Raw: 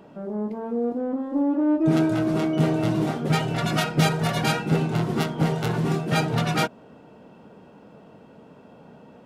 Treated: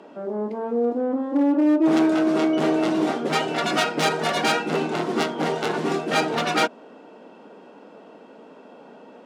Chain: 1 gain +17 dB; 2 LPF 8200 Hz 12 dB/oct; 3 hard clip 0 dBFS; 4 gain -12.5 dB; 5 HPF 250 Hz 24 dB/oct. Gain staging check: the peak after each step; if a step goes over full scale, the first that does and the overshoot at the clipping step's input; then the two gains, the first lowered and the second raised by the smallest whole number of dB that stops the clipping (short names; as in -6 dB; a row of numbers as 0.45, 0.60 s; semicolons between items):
+9.5, +9.0, 0.0, -12.5, -7.0 dBFS; step 1, 9.0 dB; step 1 +8 dB, step 4 -3.5 dB